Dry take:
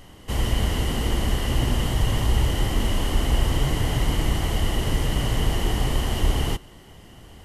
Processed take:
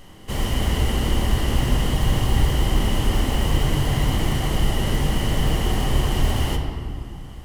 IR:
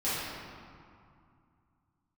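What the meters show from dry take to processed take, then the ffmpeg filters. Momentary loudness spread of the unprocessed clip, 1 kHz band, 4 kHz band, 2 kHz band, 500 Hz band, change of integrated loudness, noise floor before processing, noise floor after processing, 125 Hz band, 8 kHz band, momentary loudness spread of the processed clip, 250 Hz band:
2 LU, +2.5 dB, +1.5 dB, +1.5 dB, +2.0 dB, +2.0 dB, −46 dBFS, −37 dBFS, +2.5 dB, +1.0 dB, 6 LU, +3.0 dB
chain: -filter_complex "[0:a]acrusher=bits=7:mode=log:mix=0:aa=0.000001,asplit=2[link_01][link_02];[1:a]atrim=start_sample=2205[link_03];[link_02][link_03]afir=irnorm=-1:irlink=0,volume=-10.5dB[link_04];[link_01][link_04]amix=inputs=2:normalize=0,volume=-1.5dB"

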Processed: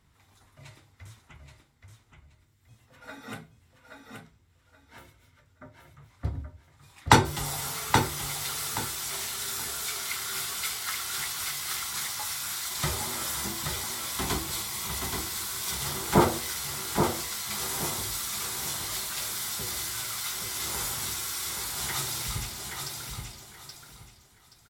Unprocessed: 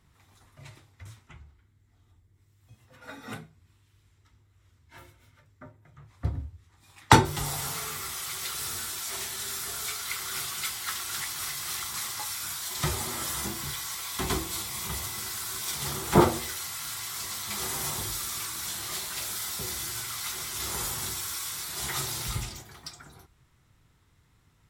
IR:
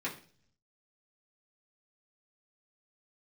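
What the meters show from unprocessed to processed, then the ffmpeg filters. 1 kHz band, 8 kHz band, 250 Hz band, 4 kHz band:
+0.5 dB, +1.0 dB, −0.5 dB, +1.5 dB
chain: -filter_complex "[0:a]aecho=1:1:826|1652|2478:0.562|0.141|0.0351,asplit=2[link_01][link_02];[1:a]atrim=start_sample=2205,asetrate=83790,aresample=44100[link_03];[link_02][link_03]afir=irnorm=-1:irlink=0,volume=-10.5dB[link_04];[link_01][link_04]amix=inputs=2:normalize=0,volume=-1dB"

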